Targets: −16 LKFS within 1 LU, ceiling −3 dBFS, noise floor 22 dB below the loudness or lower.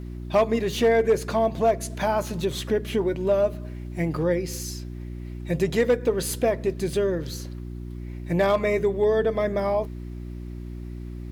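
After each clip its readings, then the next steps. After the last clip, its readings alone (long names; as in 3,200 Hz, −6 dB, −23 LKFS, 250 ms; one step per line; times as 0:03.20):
share of clipped samples 0.3%; peaks flattened at −13.0 dBFS; mains hum 60 Hz; hum harmonics up to 360 Hz; level of the hum −32 dBFS; integrated loudness −24.5 LKFS; sample peak −13.0 dBFS; target loudness −16.0 LKFS
→ clipped peaks rebuilt −13 dBFS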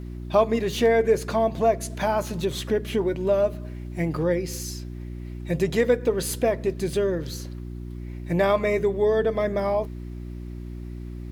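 share of clipped samples 0.0%; mains hum 60 Hz; hum harmonics up to 360 Hz; level of the hum −32 dBFS
→ hum removal 60 Hz, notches 6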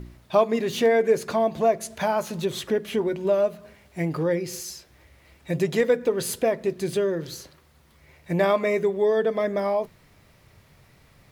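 mains hum none found; integrated loudness −24.5 LKFS; sample peak −8.0 dBFS; target loudness −16.0 LKFS
→ level +8.5 dB
brickwall limiter −3 dBFS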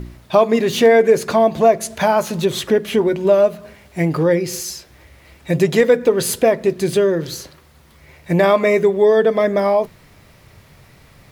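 integrated loudness −16.0 LKFS; sample peak −3.0 dBFS; background noise floor −49 dBFS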